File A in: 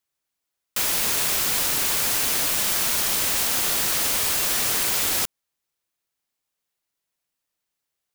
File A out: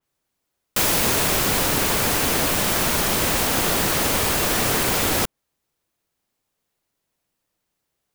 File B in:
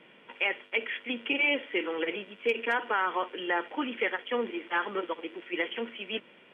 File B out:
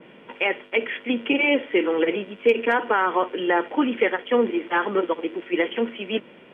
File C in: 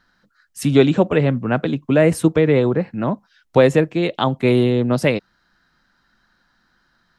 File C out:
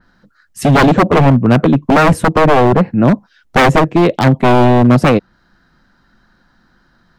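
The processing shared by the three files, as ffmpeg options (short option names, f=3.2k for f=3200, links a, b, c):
-af "tiltshelf=f=900:g=5,aeval=exprs='0.282*(abs(mod(val(0)/0.282+3,4)-2)-1)':c=same,adynamicequalizer=threshold=0.0112:dfrequency=3300:dqfactor=0.7:tfrequency=3300:tqfactor=0.7:attack=5:release=100:ratio=0.375:range=2:mode=cutabove:tftype=highshelf,volume=8dB"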